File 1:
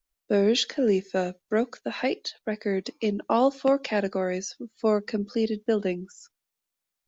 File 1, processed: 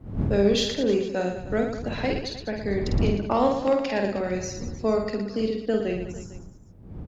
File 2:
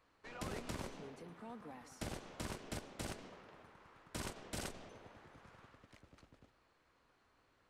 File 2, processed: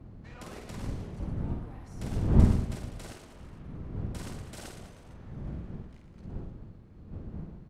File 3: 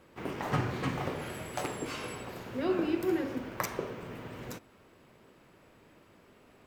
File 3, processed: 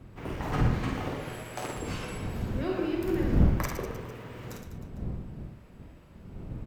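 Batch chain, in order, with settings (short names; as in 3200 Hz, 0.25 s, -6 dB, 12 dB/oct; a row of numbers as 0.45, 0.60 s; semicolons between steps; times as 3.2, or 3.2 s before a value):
wind noise 150 Hz -33 dBFS; added harmonics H 3 -22 dB, 8 -41 dB, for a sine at -8.5 dBFS; reverse bouncing-ball echo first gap 50 ms, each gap 1.3×, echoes 5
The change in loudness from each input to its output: +1.0, +14.5, +3.0 LU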